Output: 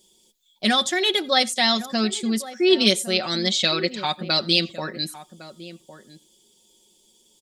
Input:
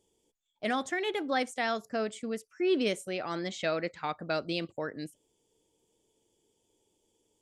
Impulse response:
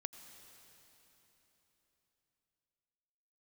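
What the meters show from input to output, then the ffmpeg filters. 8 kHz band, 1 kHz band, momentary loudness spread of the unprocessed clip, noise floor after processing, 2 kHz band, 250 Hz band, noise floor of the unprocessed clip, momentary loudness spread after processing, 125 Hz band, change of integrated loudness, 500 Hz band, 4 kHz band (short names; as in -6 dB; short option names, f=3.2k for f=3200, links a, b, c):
+17.0 dB, +7.5 dB, 9 LU, -61 dBFS, +9.5 dB, +10.0 dB, -76 dBFS, 12 LU, +11.0 dB, +11.5 dB, +7.0 dB, +20.0 dB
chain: -filter_complex "[0:a]equalizer=f=3.6k:t=o:w=1:g=11,aecho=1:1:5.4:0.65,asplit=2[a][b];[b]adelay=1108,volume=-14dB,highshelf=f=4k:g=-24.9[c];[a][c]amix=inputs=2:normalize=0,asplit=2[d][e];[1:a]atrim=start_sample=2205,atrim=end_sample=4410[f];[e][f]afir=irnorm=-1:irlink=0,volume=3dB[g];[d][g]amix=inputs=2:normalize=0,aexciter=amount=3.1:drive=3.8:freq=3.9k,equalizer=f=220:t=o:w=0.3:g=8,volume=-1dB"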